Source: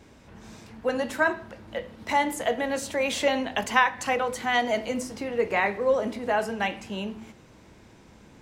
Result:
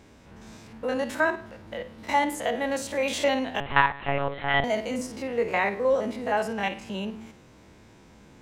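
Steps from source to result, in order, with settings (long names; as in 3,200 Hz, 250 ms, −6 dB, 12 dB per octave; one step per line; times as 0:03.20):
spectrum averaged block by block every 50 ms
0:03.60–0:04.64: one-pitch LPC vocoder at 8 kHz 140 Hz
level +1 dB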